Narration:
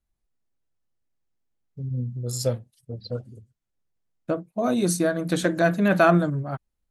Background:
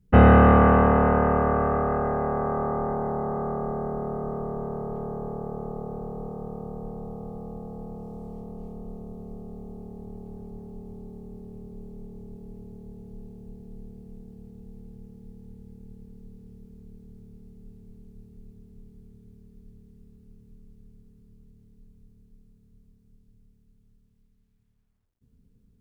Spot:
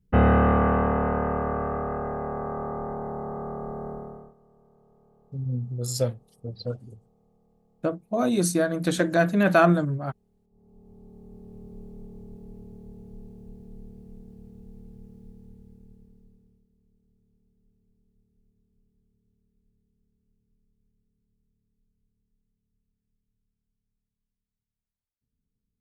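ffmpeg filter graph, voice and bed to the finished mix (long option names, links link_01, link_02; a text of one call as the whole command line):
ffmpeg -i stem1.wav -i stem2.wav -filter_complex "[0:a]adelay=3550,volume=-0.5dB[link_01];[1:a]volume=21.5dB,afade=type=out:start_time=3.9:duration=0.44:silence=0.0707946,afade=type=in:start_time=10.5:duration=1.23:silence=0.0473151,afade=type=out:start_time=15.21:duration=1.45:silence=0.112202[link_02];[link_01][link_02]amix=inputs=2:normalize=0" out.wav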